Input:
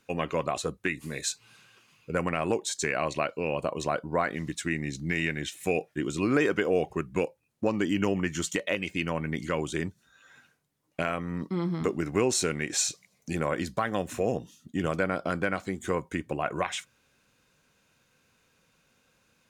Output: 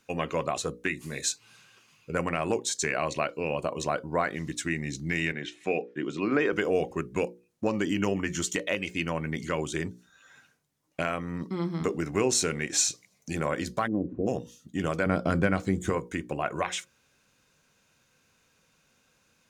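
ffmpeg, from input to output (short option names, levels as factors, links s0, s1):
-filter_complex "[0:a]asettb=1/sr,asplit=3[s0][s1][s2];[s0]atrim=end=5.324[s3];[s1]atrim=start=5.32:end=6.53,asetpts=PTS-STARTPTS,afade=t=in:d=0.004:c=qsin,afade=t=out:st=1.206:d=0.004:c=qsin,highpass=180,lowpass=3300[s4];[s2]atrim=start=6.526[s5];[s3][s4]acrossfade=d=0.004:c1=hsin:c2=qsin[s6];[s6][s5]acrossfade=d=0.004:c1=qsin:c2=hsin,asplit=3[s7][s8][s9];[s7]afade=t=out:st=13.86:d=0.02[s10];[s8]lowpass=f=300:t=q:w=3,afade=t=in:st=13.86:d=0.02,afade=t=out:st=14.26:d=0.02[s11];[s9]afade=t=in:st=14.26:d=0.02[s12];[s10][s11][s12]amix=inputs=3:normalize=0,asettb=1/sr,asplit=3[s13][s14][s15];[s13]atrim=end=15.064[s16];[s14]atrim=start=15.06:end=15.9,asetpts=PTS-STARTPTS,afade=t=in:d=0.004:c=qsin,afade=t=out:st=0.836:d=0.004:c=qsin,lowshelf=f=290:g=12[s17];[s15]atrim=start=15.896[s18];[s16][s17]acrossfade=d=0.004:c1=hsin:c2=qsin[s19];[s19][s18]acrossfade=d=0.004:c1=qsin:c2=hsin,equalizer=f=6100:t=o:w=0.67:g=3.5,bandreject=f=60:t=h:w=6,bandreject=f=120:t=h:w=6,bandreject=f=180:t=h:w=6,bandreject=f=240:t=h:w=6,bandreject=f=300:t=h:w=6,bandreject=f=360:t=h:w=6,bandreject=f=420:t=h:w=6,bandreject=f=480:t=h:w=6,bandreject=f=540:t=h:w=6"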